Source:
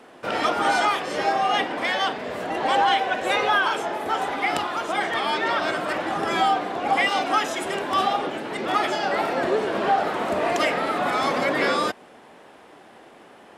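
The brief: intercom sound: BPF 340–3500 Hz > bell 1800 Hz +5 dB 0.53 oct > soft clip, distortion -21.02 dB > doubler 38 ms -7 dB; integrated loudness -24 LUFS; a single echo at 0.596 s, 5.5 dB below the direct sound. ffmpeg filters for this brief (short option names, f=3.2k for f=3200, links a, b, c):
-filter_complex "[0:a]highpass=340,lowpass=3.5k,equalizer=f=1.8k:t=o:w=0.53:g=5,aecho=1:1:596:0.531,asoftclip=threshold=-12dB,asplit=2[a][b];[b]adelay=38,volume=-7dB[c];[a][c]amix=inputs=2:normalize=0,volume=-2.5dB"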